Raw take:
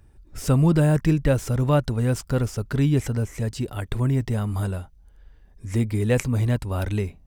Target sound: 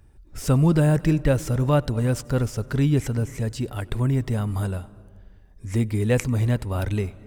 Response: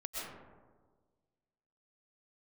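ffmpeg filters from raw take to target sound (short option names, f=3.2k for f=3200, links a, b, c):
-filter_complex "[0:a]asplit=2[a][b];[1:a]atrim=start_sample=2205,adelay=94[c];[b][c]afir=irnorm=-1:irlink=0,volume=-21dB[d];[a][d]amix=inputs=2:normalize=0"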